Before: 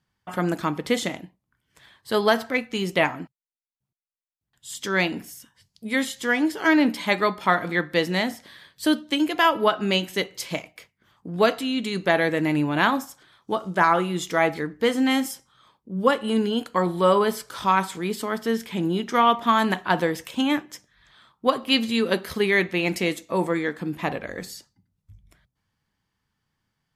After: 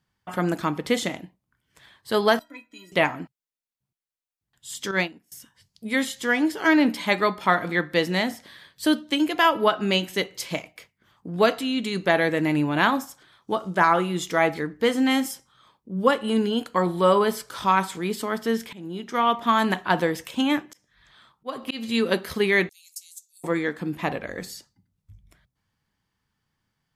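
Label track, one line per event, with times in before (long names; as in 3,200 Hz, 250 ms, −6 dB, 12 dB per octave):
2.390000	2.920000	stiff-string resonator 290 Hz, decay 0.25 s, inharmonicity 0.03
4.910000	5.320000	expander for the loud parts 2.5 to 1, over −36 dBFS
18.730000	19.850000	fade in equal-power, from −19.5 dB
20.660000	22.050000	volume swells 243 ms
22.690000	23.440000	inverse Chebyshev high-pass filter stop band from 1,100 Hz, stop band 80 dB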